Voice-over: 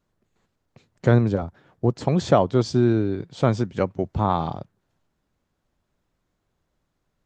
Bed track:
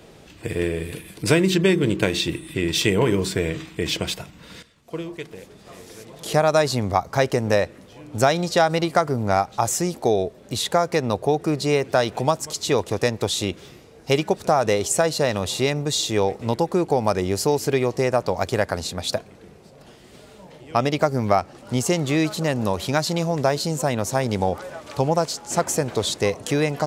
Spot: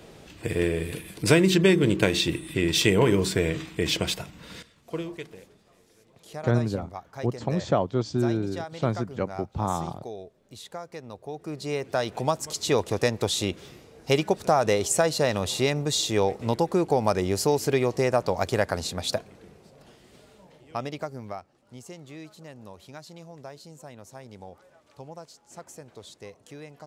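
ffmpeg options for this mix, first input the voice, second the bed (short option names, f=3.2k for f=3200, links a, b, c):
-filter_complex "[0:a]adelay=5400,volume=-6dB[a];[1:a]volume=15dB,afade=t=out:st=4.92:d=0.78:silence=0.133352,afade=t=in:st=11.24:d=1.44:silence=0.158489,afade=t=out:st=19:d=2.5:silence=0.105925[b];[a][b]amix=inputs=2:normalize=0"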